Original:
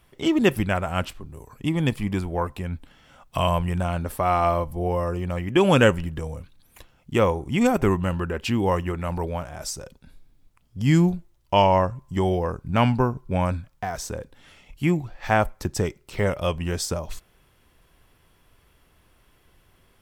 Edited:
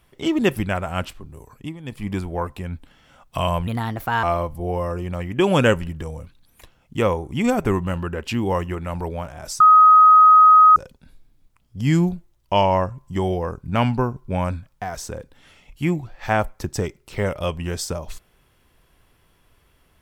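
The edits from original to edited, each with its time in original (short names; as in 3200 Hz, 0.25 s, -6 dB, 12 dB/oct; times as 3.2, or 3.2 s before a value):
1.5–2.11 dip -16 dB, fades 0.28 s
3.67–4.4 speed 130%
9.77 add tone 1260 Hz -7 dBFS 1.16 s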